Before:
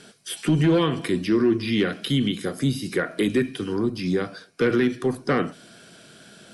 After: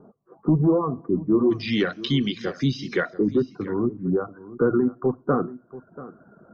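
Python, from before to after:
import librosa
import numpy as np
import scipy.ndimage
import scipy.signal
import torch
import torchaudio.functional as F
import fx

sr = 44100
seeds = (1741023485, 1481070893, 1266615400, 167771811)

y = fx.dereverb_blind(x, sr, rt60_s=0.86)
y = fx.cheby1_lowpass(y, sr, hz=fx.steps((0.0, 1200.0), (1.5, 6200.0), (3.09, 1400.0)), order=6)
y = y + 10.0 ** (-17.0 / 20.0) * np.pad(y, (int(685 * sr / 1000.0), 0))[:len(y)]
y = y * librosa.db_to_amplitude(1.5)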